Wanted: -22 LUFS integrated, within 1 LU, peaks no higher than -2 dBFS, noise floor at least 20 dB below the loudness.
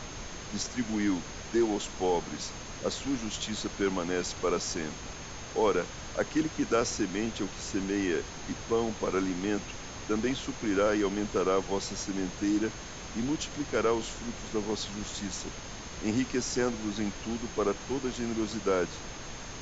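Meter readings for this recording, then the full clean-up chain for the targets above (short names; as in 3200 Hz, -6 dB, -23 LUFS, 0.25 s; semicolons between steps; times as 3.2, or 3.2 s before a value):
steady tone 6400 Hz; tone level -48 dBFS; noise floor -42 dBFS; noise floor target -52 dBFS; loudness -32.0 LUFS; peak -14.0 dBFS; loudness target -22.0 LUFS
-> notch 6400 Hz, Q 30; noise print and reduce 10 dB; gain +10 dB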